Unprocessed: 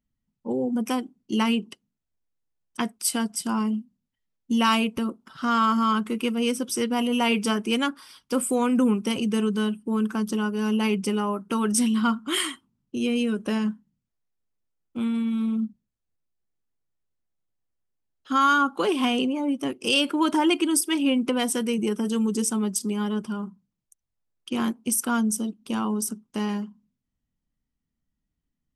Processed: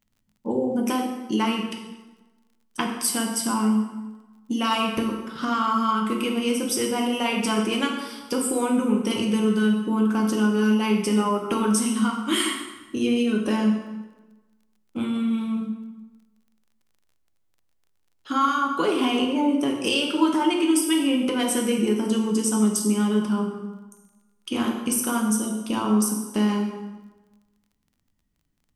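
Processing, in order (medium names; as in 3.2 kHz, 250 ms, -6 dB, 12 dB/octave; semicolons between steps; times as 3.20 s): compression, threshold -27 dBFS, peak gain reduction 11 dB; plate-style reverb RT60 1.2 s, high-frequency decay 0.75×, DRR 0 dB; crackle 31 per s -55 dBFS; trim +4.5 dB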